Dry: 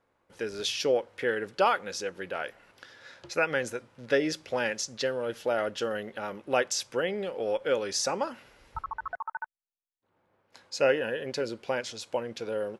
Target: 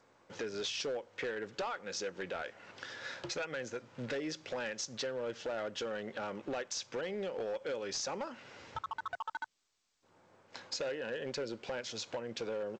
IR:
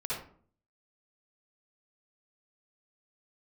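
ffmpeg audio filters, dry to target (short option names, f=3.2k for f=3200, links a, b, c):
-af "highpass=f=93:w=0.5412,highpass=f=93:w=1.3066,acompressor=threshold=-43dB:ratio=4,aresample=16000,asoftclip=type=hard:threshold=-39dB,aresample=44100,volume=6.5dB" -ar 16000 -c:a g722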